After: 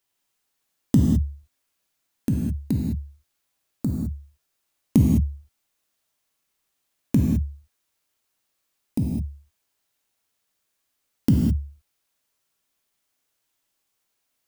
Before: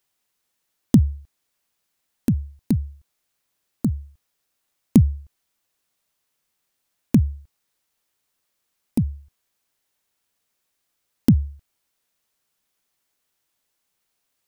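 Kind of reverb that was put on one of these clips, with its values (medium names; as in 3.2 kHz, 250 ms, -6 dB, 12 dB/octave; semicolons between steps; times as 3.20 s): gated-style reverb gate 230 ms flat, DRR -1 dB; trim -4 dB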